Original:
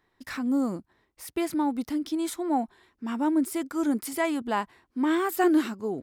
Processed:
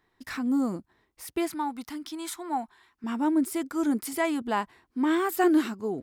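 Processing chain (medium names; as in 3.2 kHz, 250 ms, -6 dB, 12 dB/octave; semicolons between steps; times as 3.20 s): 1.48–3.04 s: resonant low shelf 720 Hz -7.5 dB, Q 1.5; band-stop 560 Hz, Q 12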